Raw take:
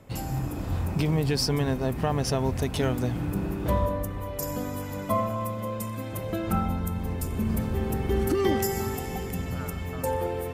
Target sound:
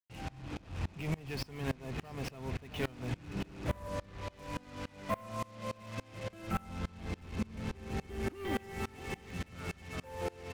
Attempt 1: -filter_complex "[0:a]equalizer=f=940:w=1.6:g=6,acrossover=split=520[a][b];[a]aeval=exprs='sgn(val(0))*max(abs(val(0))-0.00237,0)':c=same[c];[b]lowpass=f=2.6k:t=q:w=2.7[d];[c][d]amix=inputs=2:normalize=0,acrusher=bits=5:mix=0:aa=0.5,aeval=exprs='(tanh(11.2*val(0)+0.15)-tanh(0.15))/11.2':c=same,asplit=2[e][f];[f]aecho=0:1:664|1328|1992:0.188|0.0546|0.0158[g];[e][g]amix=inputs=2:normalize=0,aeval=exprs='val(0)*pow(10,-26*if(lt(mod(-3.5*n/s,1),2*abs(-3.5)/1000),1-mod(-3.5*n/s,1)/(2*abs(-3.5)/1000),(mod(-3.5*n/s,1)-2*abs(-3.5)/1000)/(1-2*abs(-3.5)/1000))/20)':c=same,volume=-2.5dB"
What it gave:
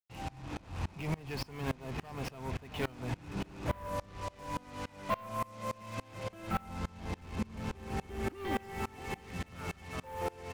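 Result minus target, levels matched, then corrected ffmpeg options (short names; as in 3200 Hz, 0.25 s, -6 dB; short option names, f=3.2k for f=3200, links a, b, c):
1000 Hz band +3.5 dB
-filter_complex "[0:a]acrossover=split=520[a][b];[a]aeval=exprs='sgn(val(0))*max(abs(val(0))-0.00237,0)':c=same[c];[b]lowpass=f=2.6k:t=q:w=2.7[d];[c][d]amix=inputs=2:normalize=0,acrusher=bits=5:mix=0:aa=0.5,aeval=exprs='(tanh(11.2*val(0)+0.15)-tanh(0.15))/11.2':c=same,asplit=2[e][f];[f]aecho=0:1:664|1328|1992:0.188|0.0546|0.0158[g];[e][g]amix=inputs=2:normalize=0,aeval=exprs='val(0)*pow(10,-26*if(lt(mod(-3.5*n/s,1),2*abs(-3.5)/1000),1-mod(-3.5*n/s,1)/(2*abs(-3.5)/1000),(mod(-3.5*n/s,1)-2*abs(-3.5)/1000)/(1-2*abs(-3.5)/1000))/20)':c=same,volume=-2.5dB"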